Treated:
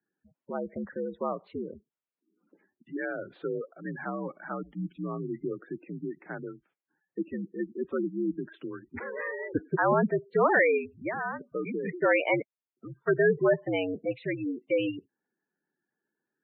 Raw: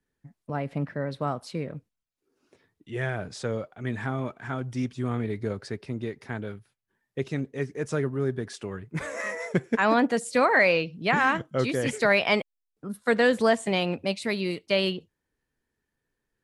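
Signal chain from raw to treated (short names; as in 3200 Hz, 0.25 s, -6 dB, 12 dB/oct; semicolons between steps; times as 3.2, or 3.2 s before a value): mistuned SSB -71 Hz 270–3500 Hz; 10.77–11.88 compressor 10:1, threshold -27 dBFS, peak gain reduction 9.5 dB; air absorption 260 m; spectral gate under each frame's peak -15 dB strong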